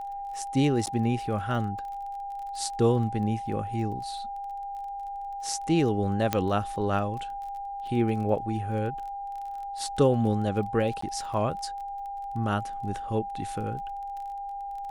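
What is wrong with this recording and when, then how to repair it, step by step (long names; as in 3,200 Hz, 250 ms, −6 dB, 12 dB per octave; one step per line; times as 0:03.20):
surface crackle 23 per second −37 dBFS
whistle 800 Hz −33 dBFS
0:00.86–0:00.87: drop-out 9.5 ms
0:06.33: click −9 dBFS
0:11.01–0:11.02: drop-out 14 ms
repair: click removal
notch filter 800 Hz, Q 30
repair the gap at 0:00.86, 9.5 ms
repair the gap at 0:11.01, 14 ms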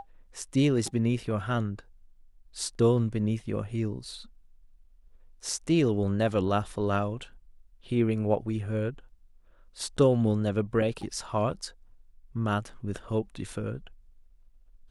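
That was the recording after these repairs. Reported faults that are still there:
none of them is left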